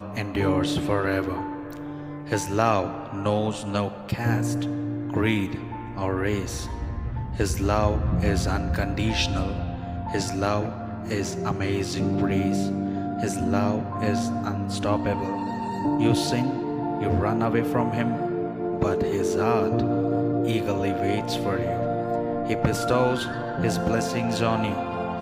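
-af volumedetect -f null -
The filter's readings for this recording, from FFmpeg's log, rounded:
mean_volume: -25.0 dB
max_volume: -6.2 dB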